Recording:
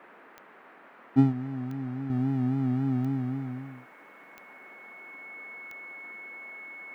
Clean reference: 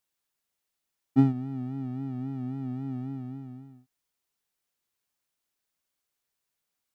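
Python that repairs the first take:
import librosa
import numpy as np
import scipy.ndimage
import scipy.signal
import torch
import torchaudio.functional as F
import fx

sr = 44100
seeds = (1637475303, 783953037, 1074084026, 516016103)

y = fx.fix_declick_ar(x, sr, threshold=10.0)
y = fx.notch(y, sr, hz=2200.0, q=30.0)
y = fx.noise_reduce(y, sr, print_start_s=0.44, print_end_s=0.94, reduce_db=30.0)
y = fx.fix_level(y, sr, at_s=2.1, step_db=-7.0)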